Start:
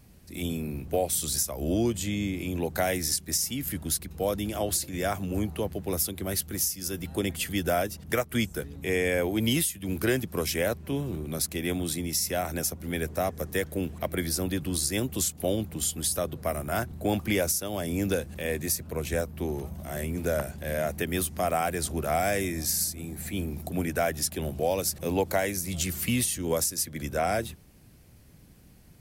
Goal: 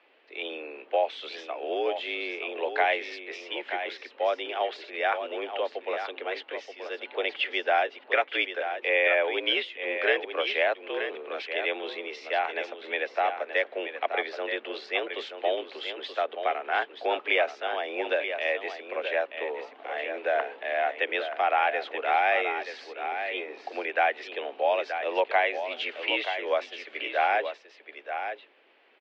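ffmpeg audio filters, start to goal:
ffmpeg -i in.wav -af "highshelf=frequency=2000:gain=10.5,aecho=1:1:928:0.376,highpass=frequency=360:width_type=q:width=0.5412,highpass=frequency=360:width_type=q:width=1.307,lowpass=frequency=3000:width_type=q:width=0.5176,lowpass=frequency=3000:width_type=q:width=0.7071,lowpass=frequency=3000:width_type=q:width=1.932,afreqshift=74,volume=1.5dB" out.wav

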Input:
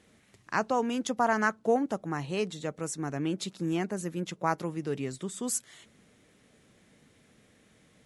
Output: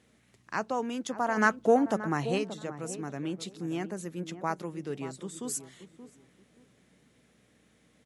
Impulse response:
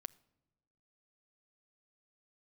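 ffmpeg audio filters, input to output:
-filter_complex "[0:a]aeval=exprs='val(0)+0.000891*(sin(2*PI*60*n/s)+sin(2*PI*2*60*n/s)/2+sin(2*PI*3*60*n/s)/3+sin(2*PI*4*60*n/s)/4+sin(2*PI*5*60*n/s)/5)':channel_layout=same,asplit=3[link_01][link_02][link_03];[link_01]afade=type=out:start_time=1.36:duration=0.02[link_04];[link_02]acontrast=81,afade=type=in:start_time=1.36:duration=0.02,afade=type=out:start_time=2.37:duration=0.02[link_05];[link_03]afade=type=in:start_time=2.37:duration=0.02[link_06];[link_04][link_05][link_06]amix=inputs=3:normalize=0,highpass=110,asplit=2[link_07][link_08];[link_08]adelay=578,lowpass=frequency=910:poles=1,volume=-11dB,asplit=2[link_09][link_10];[link_10]adelay=578,lowpass=frequency=910:poles=1,volume=0.25,asplit=2[link_11][link_12];[link_12]adelay=578,lowpass=frequency=910:poles=1,volume=0.25[link_13];[link_09][link_11][link_13]amix=inputs=3:normalize=0[link_14];[link_07][link_14]amix=inputs=2:normalize=0,volume=-3.5dB"

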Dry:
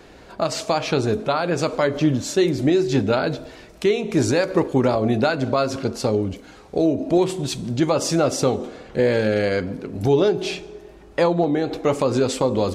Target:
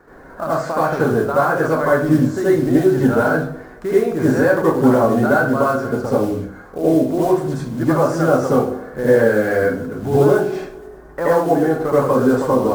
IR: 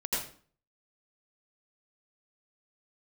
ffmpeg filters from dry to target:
-filter_complex "[0:a]highshelf=frequency=2100:width_type=q:width=3:gain=-11.5,acrusher=bits=6:mode=log:mix=0:aa=0.000001[link_01];[1:a]atrim=start_sample=2205,asetrate=48510,aresample=44100[link_02];[link_01][link_02]afir=irnorm=-1:irlink=0,volume=-2.5dB"

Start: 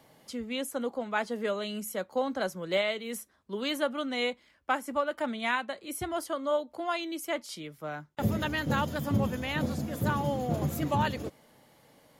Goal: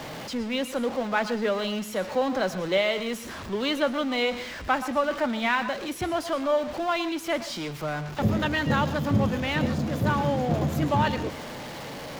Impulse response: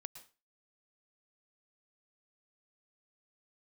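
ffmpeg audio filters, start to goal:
-filter_complex "[0:a]aeval=exprs='val(0)+0.5*0.0188*sgn(val(0))':channel_layout=same,asplit=2[link_01][link_02];[1:a]atrim=start_sample=2205,lowpass=6400[link_03];[link_02][link_03]afir=irnorm=-1:irlink=0,volume=11.5dB[link_04];[link_01][link_04]amix=inputs=2:normalize=0,volume=-6.5dB"

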